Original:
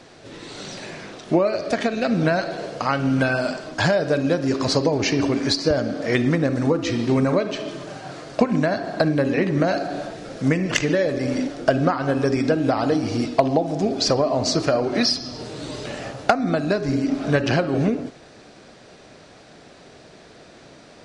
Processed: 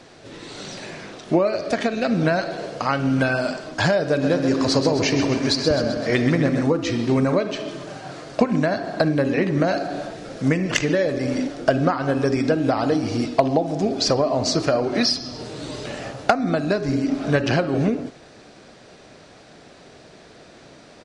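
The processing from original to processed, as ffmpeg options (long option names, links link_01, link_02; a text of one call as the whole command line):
ffmpeg -i in.wav -filter_complex "[0:a]asplit=3[link_01][link_02][link_03];[link_01]afade=type=out:start_time=4.21:duration=0.02[link_04];[link_02]aecho=1:1:130|260|390|520|650|780|910:0.398|0.235|0.139|0.0818|0.0482|0.0285|0.0168,afade=type=in:start_time=4.21:duration=0.02,afade=type=out:start_time=6.64:duration=0.02[link_05];[link_03]afade=type=in:start_time=6.64:duration=0.02[link_06];[link_04][link_05][link_06]amix=inputs=3:normalize=0" out.wav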